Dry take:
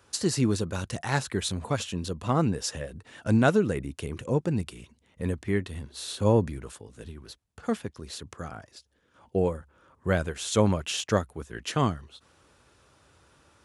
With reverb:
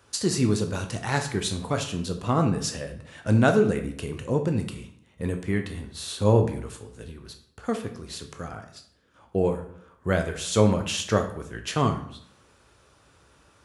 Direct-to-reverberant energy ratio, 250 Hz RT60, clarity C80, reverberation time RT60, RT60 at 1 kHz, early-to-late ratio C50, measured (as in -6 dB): 5.0 dB, 0.75 s, 13.0 dB, 0.65 s, 0.60 s, 10.0 dB